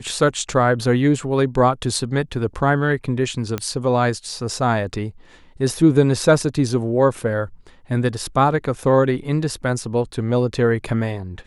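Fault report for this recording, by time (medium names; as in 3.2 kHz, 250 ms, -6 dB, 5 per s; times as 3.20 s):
3.58 s: pop -9 dBFS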